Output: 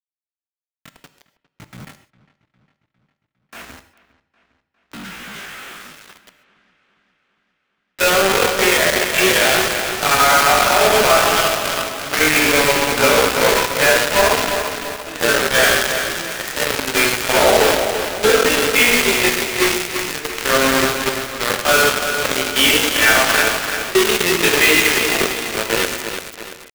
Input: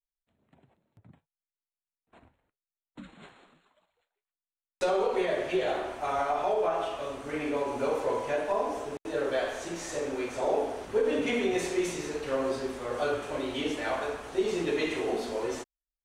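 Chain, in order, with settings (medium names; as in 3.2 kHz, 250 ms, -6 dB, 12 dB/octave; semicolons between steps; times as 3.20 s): high-order bell 2.1 kHz +12 dB; hum notches 50/100 Hz; level rider gain up to 16.5 dB; tempo 0.6×; companded quantiser 2-bit; on a send: feedback echo behind a low-pass 405 ms, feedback 60%, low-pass 3.7 kHz, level -20 dB; on the sum: gated-style reverb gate 160 ms flat, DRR 10.5 dB; bit-crushed delay 339 ms, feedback 55%, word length 3-bit, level -7 dB; trim -7.5 dB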